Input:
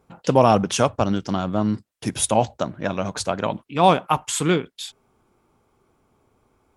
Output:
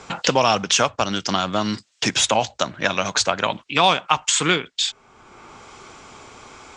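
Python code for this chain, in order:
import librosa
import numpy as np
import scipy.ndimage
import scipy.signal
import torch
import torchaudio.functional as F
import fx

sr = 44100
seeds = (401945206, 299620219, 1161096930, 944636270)

y = scipy.signal.sosfilt(scipy.signal.butter(8, 7700.0, 'lowpass', fs=sr, output='sos'), x)
y = fx.tilt_shelf(y, sr, db=-9.0, hz=970.0)
y = fx.band_squash(y, sr, depth_pct=70)
y = F.gain(torch.from_numpy(y), 2.5).numpy()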